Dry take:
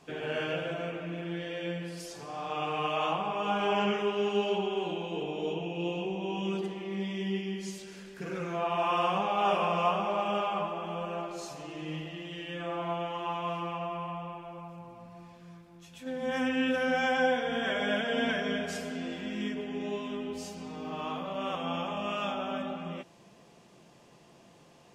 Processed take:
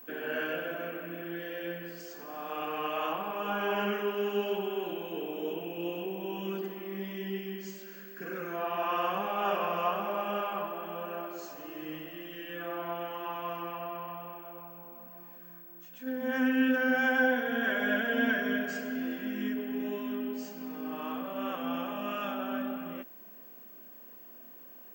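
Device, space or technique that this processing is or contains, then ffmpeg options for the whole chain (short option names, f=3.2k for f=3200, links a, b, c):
old television with a line whistle: -af "highpass=f=210:w=0.5412,highpass=f=210:w=1.3066,equalizer=f=250:t=q:w=4:g=7,equalizer=f=840:t=q:w=4:g=-4,equalizer=f=1.6k:t=q:w=4:g=8,equalizer=f=2.3k:t=q:w=4:g=-3,equalizer=f=3.7k:t=q:w=4:g=-8,equalizer=f=5.5k:t=q:w=4:g=-4,lowpass=f=7.1k:w=0.5412,lowpass=f=7.1k:w=1.3066,aeval=exprs='val(0)+0.00501*sin(2*PI*15734*n/s)':c=same,volume=-2dB"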